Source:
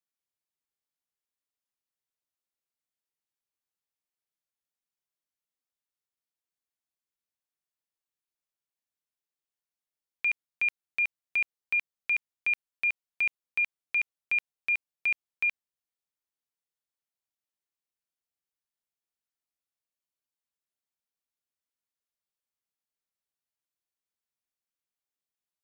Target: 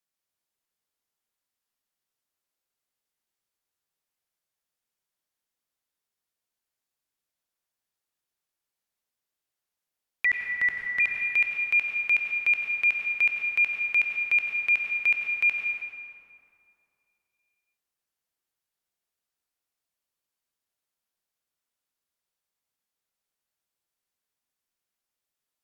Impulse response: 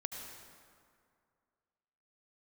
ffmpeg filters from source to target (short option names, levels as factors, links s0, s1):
-filter_complex "[0:a]bandreject=f=50:t=h:w=6,bandreject=f=100:t=h:w=6,bandreject=f=150:t=h:w=6,bandreject=f=200:t=h:w=6,bandreject=f=250:t=h:w=6,bandreject=f=300:t=h:w=6,asettb=1/sr,asplit=3[s0][s1][s2];[s0]atrim=end=10.254[s3];[s1]atrim=start=10.25:end=11,asetpts=PTS-STARTPTS,afade=t=in:d=0.004:c=qsin,afade=t=out:st=0.746:d=0.004:c=qsin,afreqshift=-450[s4];[s2]atrim=start=10.996[s5];[s3][s4]acrossfade=d=0.004:c1=hsin:c2=qsin[s6];[s6][s5]acrossfade=d=0.004:c1=qsin:c2=hsin[s7];[1:a]atrim=start_sample=2205,asetrate=37485,aresample=44100[s8];[s7][s8]afir=irnorm=-1:irlink=0,volume=1.88"